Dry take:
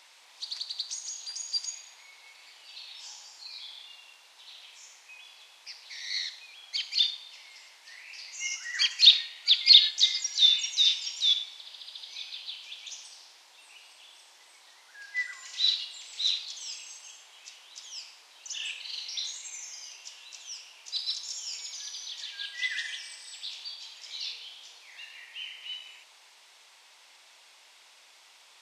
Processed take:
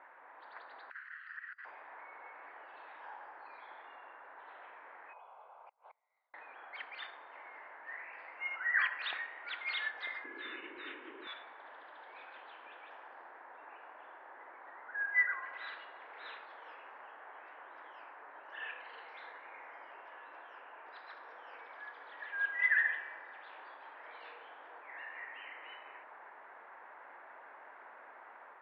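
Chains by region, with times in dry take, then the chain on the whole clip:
0:00.90–0:01.65: lower of the sound and its delayed copy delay 0.7 ms + Butterworth high-pass 1,500 Hz + compressor whose output falls as the input rises −41 dBFS, ratio −0.5
0:05.13–0:06.34: low-pass filter 3,100 Hz + gate with flip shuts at −40 dBFS, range −30 dB + phaser with its sweep stopped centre 750 Hz, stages 4
0:10.24–0:11.27: low-pass filter 3,200 Hz 24 dB per octave + low shelf with overshoot 480 Hz +12 dB, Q 3
whole clip: elliptic low-pass filter 1,700 Hz, stop band 80 dB; automatic gain control gain up to 4 dB; level +7.5 dB

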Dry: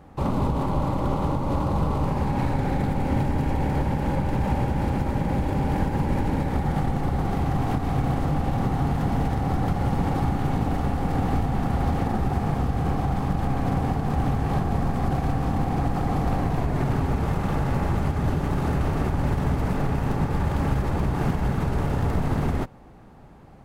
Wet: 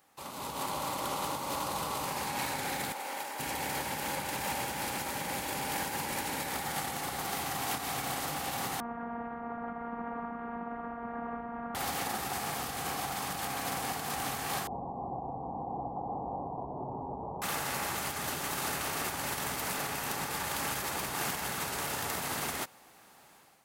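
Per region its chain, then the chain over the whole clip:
0:02.92–0:03.40: high-pass filter 650 Hz + tilt shelving filter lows +5.5 dB, about 850 Hz
0:08.80–0:11.75: low-shelf EQ 160 Hz +7 dB + phases set to zero 234 Hz + inverse Chebyshev low-pass filter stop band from 4,900 Hz, stop band 60 dB
0:14.67–0:17.42: Butterworth low-pass 990 Hz 72 dB per octave + double-tracking delay 16 ms −12 dB
whole clip: first difference; automatic gain control gain up to 10 dB; level +3 dB

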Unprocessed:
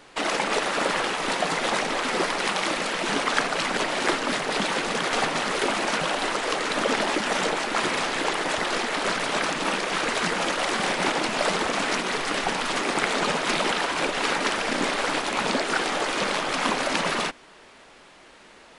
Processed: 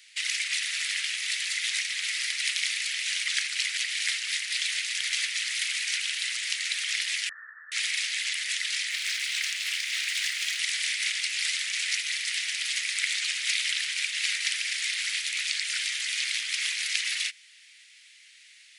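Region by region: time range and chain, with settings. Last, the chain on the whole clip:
0:07.29–0:07.72: Chebyshev low-pass filter 1,800 Hz, order 10 + comb filter 1.6 ms, depth 33%
0:08.90–0:10.59: running median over 3 samples + double-tracking delay 34 ms −11.5 dB + highs frequency-modulated by the lows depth 0.3 ms
whole clip: elliptic high-pass filter 2,000 Hz, stop band 70 dB; high-shelf EQ 5,000 Hz +5 dB

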